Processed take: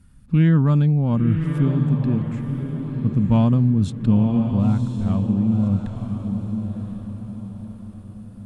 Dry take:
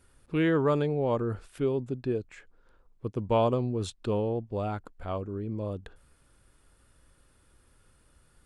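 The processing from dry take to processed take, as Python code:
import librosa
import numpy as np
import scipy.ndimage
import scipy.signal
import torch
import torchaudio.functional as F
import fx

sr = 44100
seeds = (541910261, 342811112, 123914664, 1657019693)

y = fx.cheby_harmonics(x, sr, harmonics=(6,), levels_db=(-35,), full_scale_db=-12.5)
y = fx.low_shelf_res(y, sr, hz=290.0, db=12.0, q=3.0)
y = fx.echo_diffused(y, sr, ms=1024, feedback_pct=42, wet_db=-6.0)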